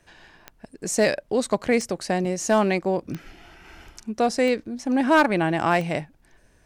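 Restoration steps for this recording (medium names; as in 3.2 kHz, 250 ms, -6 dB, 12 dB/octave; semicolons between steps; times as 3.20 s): clip repair -10.5 dBFS; de-click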